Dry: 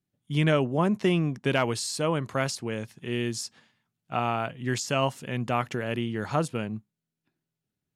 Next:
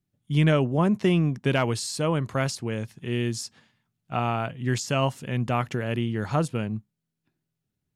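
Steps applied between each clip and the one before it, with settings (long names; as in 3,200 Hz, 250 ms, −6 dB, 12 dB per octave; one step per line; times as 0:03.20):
low-shelf EQ 130 Hz +10 dB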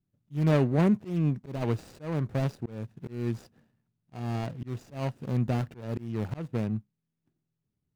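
running median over 41 samples
volume swells 252 ms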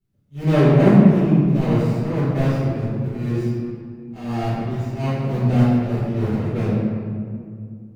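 convolution reverb RT60 2.2 s, pre-delay 5 ms, DRR −14.5 dB
level −4.5 dB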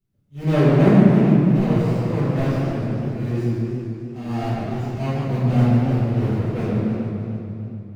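feedback echo with a swinging delay time 147 ms, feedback 69%, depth 169 cents, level −6.5 dB
level −2 dB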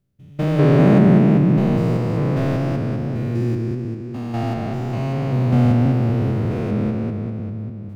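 spectrum averaged block by block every 200 ms
level +2.5 dB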